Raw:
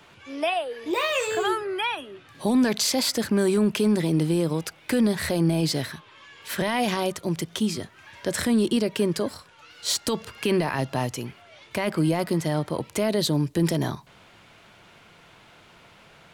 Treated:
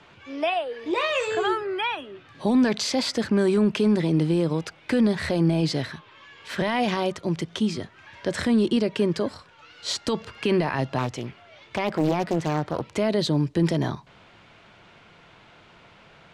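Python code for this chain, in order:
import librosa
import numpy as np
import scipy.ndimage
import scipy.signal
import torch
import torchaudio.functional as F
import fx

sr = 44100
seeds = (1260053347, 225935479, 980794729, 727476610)

y = fx.air_absorb(x, sr, metres=91.0)
y = fx.doppler_dist(y, sr, depth_ms=0.65, at=(10.98, 12.88))
y = F.gain(torch.from_numpy(y), 1.0).numpy()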